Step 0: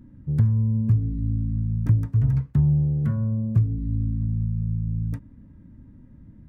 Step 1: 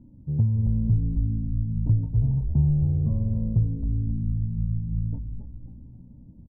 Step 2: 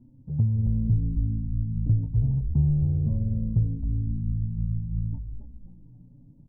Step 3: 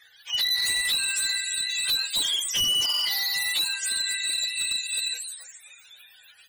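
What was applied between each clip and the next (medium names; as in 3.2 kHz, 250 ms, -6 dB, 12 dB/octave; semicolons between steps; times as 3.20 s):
steep low-pass 900 Hz 48 dB/octave; frequency-shifting echo 267 ms, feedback 49%, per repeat -58 Hz, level -5.5 dB; trim -2.5 dB
touch-sensitive flanger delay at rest 8.9 ms, full sweep at -19 dBFS; trim -1 dB
spectrum inverted on a logarithmic axis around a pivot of 660 Hz; overload inside the chain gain 28 dB; trim +6.5 dB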